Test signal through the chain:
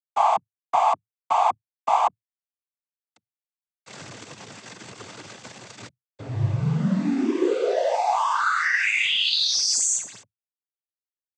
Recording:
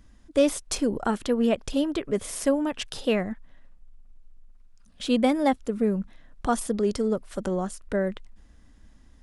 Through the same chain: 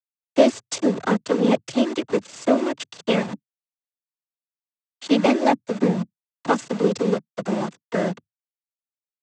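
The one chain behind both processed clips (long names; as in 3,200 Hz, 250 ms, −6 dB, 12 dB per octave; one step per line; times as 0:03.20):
harmonic generator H 2 −26 dB, 5 −30 dB, 7 −23 dB, 8 −38 dB, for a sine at −9 dBFS
centre clipping without the shift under −34.5 dBFS
cochlear-implant simulation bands 16
level +5 dB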